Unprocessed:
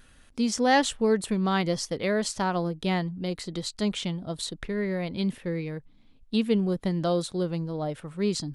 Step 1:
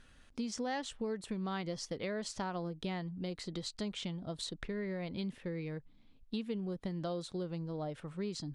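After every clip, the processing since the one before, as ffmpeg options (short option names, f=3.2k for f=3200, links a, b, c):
-af "lowpass=7.6k,acompressor=threshold=-31dB:ratio=4,volume=-5dB"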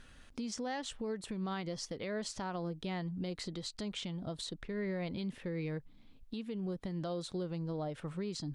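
-af "alimiter=level_in=10.5dB:limit=-24dB:level=0:latency=1:release=214,volume=-10.5dB,volume=4dB"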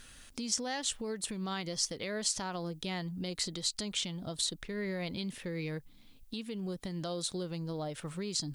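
-af "crystalizer=i=4:c=0"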